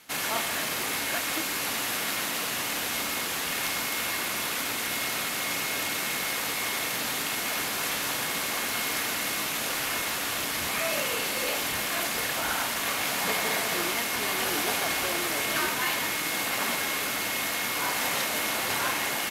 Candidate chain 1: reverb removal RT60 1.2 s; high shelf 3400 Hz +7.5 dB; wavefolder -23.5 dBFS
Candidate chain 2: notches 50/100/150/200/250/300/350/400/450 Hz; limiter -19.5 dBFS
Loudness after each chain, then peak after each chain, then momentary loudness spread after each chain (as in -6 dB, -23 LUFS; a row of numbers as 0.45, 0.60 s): -27.0, -28.0 LUFS; -23.5, -19.5 dBFS; 1, 1 LU